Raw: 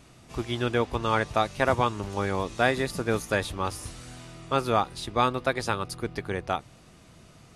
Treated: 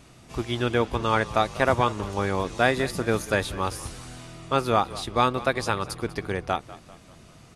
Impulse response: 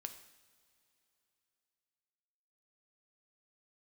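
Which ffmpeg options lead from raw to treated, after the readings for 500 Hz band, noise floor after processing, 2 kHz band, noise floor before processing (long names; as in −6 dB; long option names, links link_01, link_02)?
+2.0 dB, −51 dBFS, +2.0 dB, −53 dBFS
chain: -filter_complex "[0:a]asplit=5[link_01][link_02][link_03][link_04][link_05];[link_02]adelay=195,afreqshift=-34,volume=-17.5dB[link_06];[link_03]adelay=390,afreqshift=-68,volume=-23.9dB[link_07];[link_04]adelay=585,afreqshift=-102,volume=-30.3dB[link_08];[link_05]adelay=780,afreqshift=-136,volume=-36.6dB[link_09];[link_01][link_06][link_07][link_08][link_09]amix=inputs=5:normalize=0,volume=2dB"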